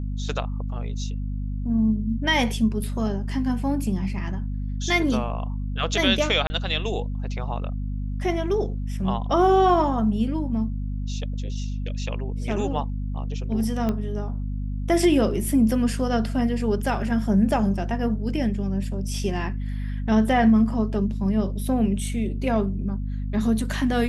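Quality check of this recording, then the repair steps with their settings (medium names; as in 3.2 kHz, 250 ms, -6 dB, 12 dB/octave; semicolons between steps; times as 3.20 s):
hum 50 Hz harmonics 5 -28 dBFS
6.47–6.50 s: dropout 30 ms
13.89 s: pop -14 dBFS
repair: de-click; de-hum 50 Hz, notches 5; interpolate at 6.47 s, 30 ms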